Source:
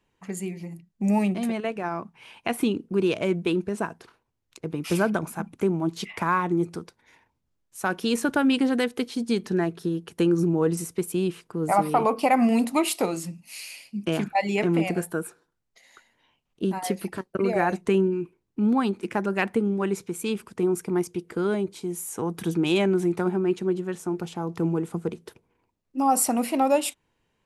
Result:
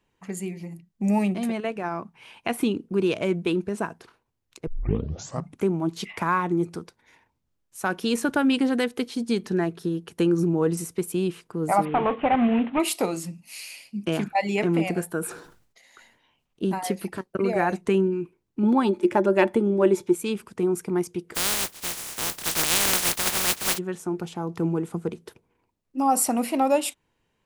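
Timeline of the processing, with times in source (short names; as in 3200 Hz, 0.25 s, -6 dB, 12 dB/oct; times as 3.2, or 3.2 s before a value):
4.67 tape start 0.91 s
11.85–12.8 CVSD 16 kbps
15.18–16.87 sustainer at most 83 dB/s
18.63–20.15 small resonant body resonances 360/580/880/3400 Hz, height 15 dB, ringing for 85 ms
21.34–23.77 spectral contrast lowered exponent 0.11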